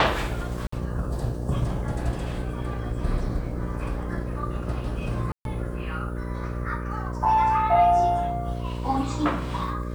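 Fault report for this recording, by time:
buzz 60 Hz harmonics 10 -31 dBFS
0.67–0.72 gap 54 ms
5.32–5.45 gap 0.132 s

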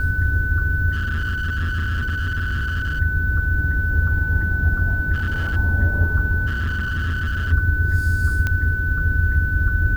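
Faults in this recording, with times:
tone 1500 Hz -23 dBFS
0.92–3 clipped -19.5 dBFS
5.13–5.57 clipped -18.5 dBFS
6.46–7.53 clipped -19.5 dBFS
8.47 pop -10 dBFS

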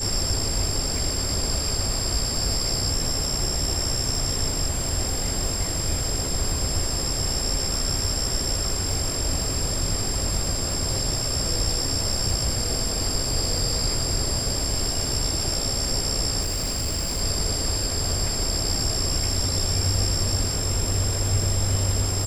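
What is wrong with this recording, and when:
crackle 76/s -32 dBFS
tone 7500 Hz -29 dBFS
16.4–17.22 clipped -22 dBFS

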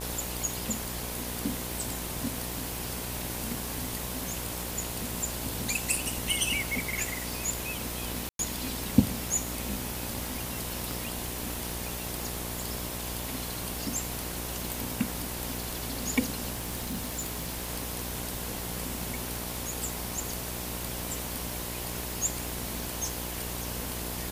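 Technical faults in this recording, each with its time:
buzz 60 Hz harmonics 18 -39 dBFS
crackle 190/s -39 dBFS
8.29–8.39 gap 0.102 s
10.91 pop
16.51–17.7 clipped -29 dBFS

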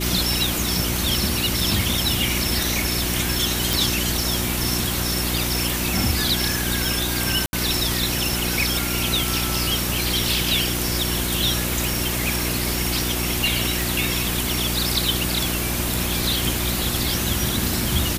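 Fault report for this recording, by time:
hum 60 Hz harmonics 6 -27 dBFS
3.73 pop
7.46–7.53 gap 71 ms
13.82 pop

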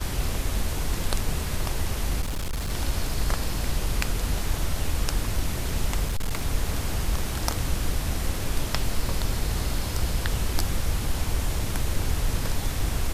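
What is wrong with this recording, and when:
2.21–2.72 clipped -25 dBFS
6.05–6.47 clipped -21.5 dBFS

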